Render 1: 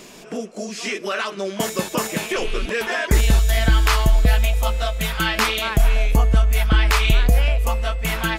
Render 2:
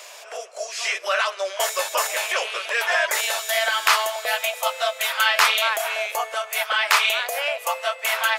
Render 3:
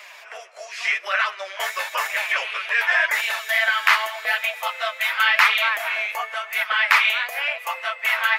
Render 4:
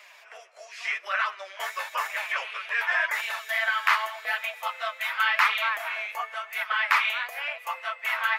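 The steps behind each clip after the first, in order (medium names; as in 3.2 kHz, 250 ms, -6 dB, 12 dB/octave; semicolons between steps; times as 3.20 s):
elliptic high-pass 570 Hz, stop band 70 dB; trim +3.5 dB
ten-band graphic EQ 500 Hz -5 dB, 1 kHz +3 dB, 2 kHz +11 dB, 8 kHz -7 dB; flange 0.91 Hz, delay 4.6 ms, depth 7 ms, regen +38%; trim -1.5 dB
dynamic bell 1.1 kHz, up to +6 dB, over -32 dBFS, Q 1.3; trim -8.5 dB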